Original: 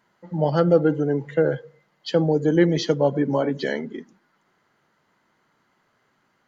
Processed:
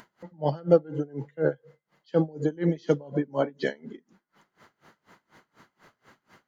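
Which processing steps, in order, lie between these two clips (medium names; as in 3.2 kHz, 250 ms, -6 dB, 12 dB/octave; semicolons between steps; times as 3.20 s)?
upward compressor, threshold -40 dBFS; logarithmic tremolo 4.1 Hz, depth 28 dB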